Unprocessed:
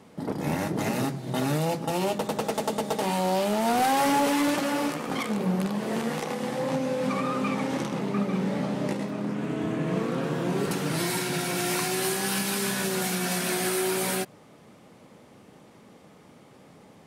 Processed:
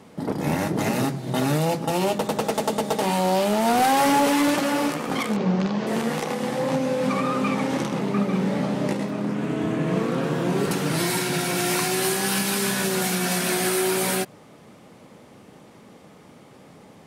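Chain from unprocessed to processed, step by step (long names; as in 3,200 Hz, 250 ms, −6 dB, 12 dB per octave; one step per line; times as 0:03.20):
0:05.36–0:05.87: Butterworth low-pass 6,500 Hz 36 dB per octave
level +4 dB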